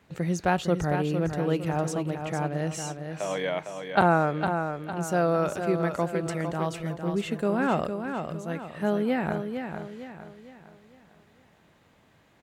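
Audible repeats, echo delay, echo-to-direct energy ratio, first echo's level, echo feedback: 4, 456 ms, −6.0 dB, −7.0 dB, 41%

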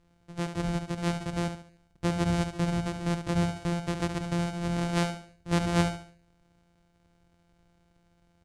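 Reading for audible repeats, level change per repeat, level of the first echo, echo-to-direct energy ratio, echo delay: 4, −8.5 dB, −8.0 dB, −7.5 dB, 71 ms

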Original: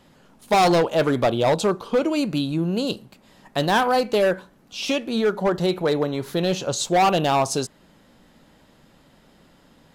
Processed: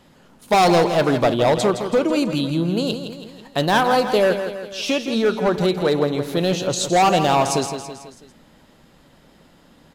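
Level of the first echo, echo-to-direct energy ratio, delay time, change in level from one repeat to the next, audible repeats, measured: −9.0 dB, −7.5 dB, 164 ms, −5.5 dB, 4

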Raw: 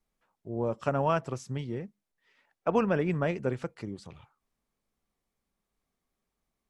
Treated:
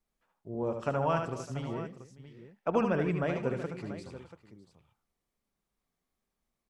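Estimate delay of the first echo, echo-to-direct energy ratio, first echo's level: 74 ms, −4.5 dB, −5.5 dB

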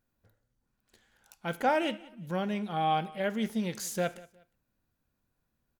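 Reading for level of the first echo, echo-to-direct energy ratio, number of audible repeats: −21.5 dB, −21.0 dB, 2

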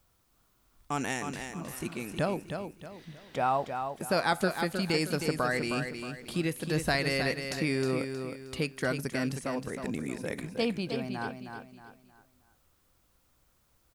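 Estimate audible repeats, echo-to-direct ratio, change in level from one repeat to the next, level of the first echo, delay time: 4, −6.5 dB, −9.0 dB, −7.0 dB, 314 ms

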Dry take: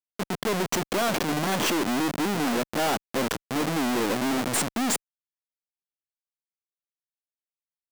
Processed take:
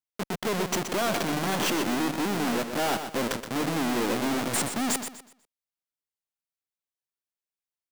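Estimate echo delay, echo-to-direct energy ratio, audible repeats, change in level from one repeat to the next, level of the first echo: 123 ms, −8.0 dB, 3, −10.5 dB, −8.5 dB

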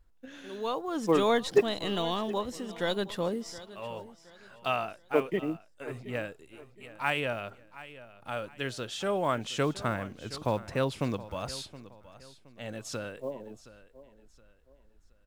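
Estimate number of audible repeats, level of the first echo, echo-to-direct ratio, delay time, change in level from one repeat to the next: 2, −17.0 dB, −16.5 dB, 720 ms, −9.5 dB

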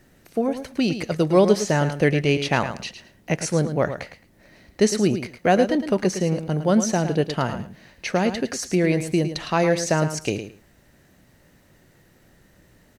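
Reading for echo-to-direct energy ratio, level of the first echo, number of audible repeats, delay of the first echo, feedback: −10.0 dB, −10.0 dB, 2, 109 ms, 17%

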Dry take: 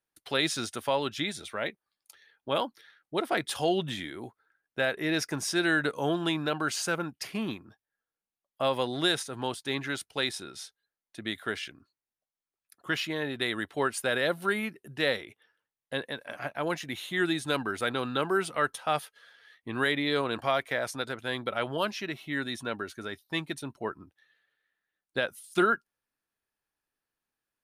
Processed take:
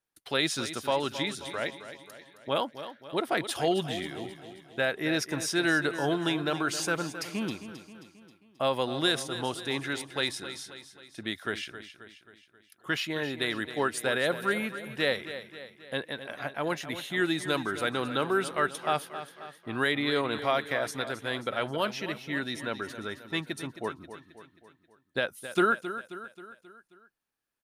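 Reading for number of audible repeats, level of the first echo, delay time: 5, −12.0 dB, 267 ms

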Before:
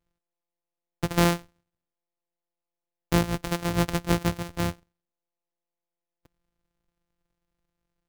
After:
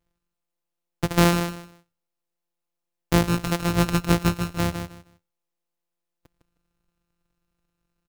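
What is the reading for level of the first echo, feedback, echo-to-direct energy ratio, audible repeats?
−8.0 dB, 21%, −8.0 dB, 2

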